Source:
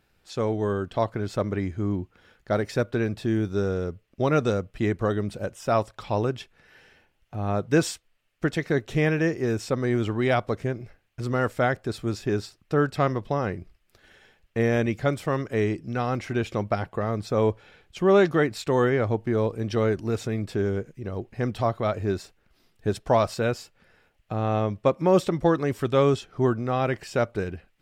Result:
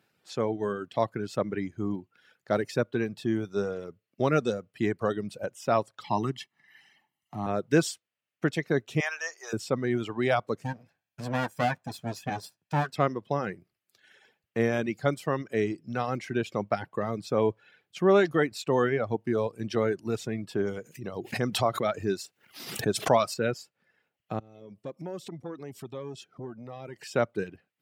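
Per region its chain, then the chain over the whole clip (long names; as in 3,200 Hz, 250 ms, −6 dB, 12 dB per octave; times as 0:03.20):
0:06.04–0:07.46: high-pass filter 130 Hz + comb filter 1 ms, depth 85%
0:09.00–0:09.53: high-pass filter 700 Hz 24 dB per octave + parametric band 6,300 Hz +13.5 dB 0.42 octaves
0:10.64–0:12.93: lower of the sound and its delayed copy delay 1.2 ms + double-tracking delay 12 ms −10.5 dB
0:20.67–0:23.34: high-shelf EQ 3,200 Hz +7.5 dB + background raised ahead of every attack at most 69 dB per second
0:24.39–0:27.00: parametric band 1,400 Hz −6.5 dB 1.8 octaves + downward compressor 3 to 1, threshold −34 dBFS + saturating transformer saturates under 360 Hz
whole clip: high-pass filter 120 Hz 24 dB per octave; reverb reduction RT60 1.1 s; level −1.5 dB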